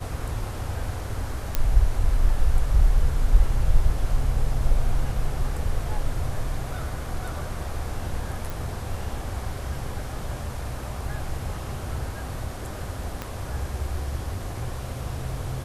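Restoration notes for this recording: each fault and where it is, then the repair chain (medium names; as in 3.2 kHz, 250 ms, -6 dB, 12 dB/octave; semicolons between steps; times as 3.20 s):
1.55 s: pop -7 dBFS
8.50 s: pop
13.22 s: pop -16 dBFS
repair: de-click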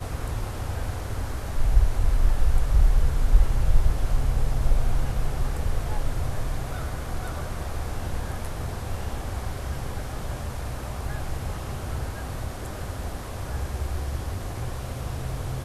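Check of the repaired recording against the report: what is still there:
13.22 s: pop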